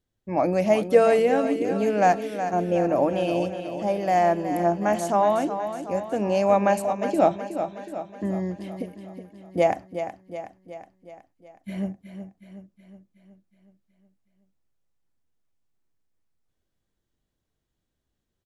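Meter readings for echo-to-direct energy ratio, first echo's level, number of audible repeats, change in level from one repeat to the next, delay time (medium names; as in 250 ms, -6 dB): -8.0 dB, -9.5 dB, 6, -5.0 dB, 369 ms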